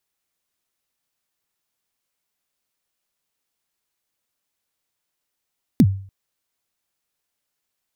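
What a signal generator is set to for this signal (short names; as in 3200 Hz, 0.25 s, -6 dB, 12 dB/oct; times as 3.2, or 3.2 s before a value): kick drum length 0.29 s, from 290 Hz, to 97 Hz, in 55 ms, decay 0.47 s, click on, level -6 dB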